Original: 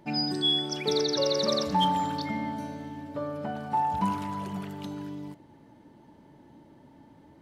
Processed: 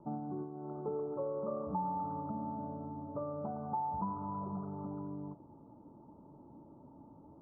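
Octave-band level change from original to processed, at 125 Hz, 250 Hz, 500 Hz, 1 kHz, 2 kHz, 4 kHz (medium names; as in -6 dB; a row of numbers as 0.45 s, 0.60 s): -7.0 dB, -8.5 dB, -9.0 dB, -9.0 dB, under -30 dB, under -40 dB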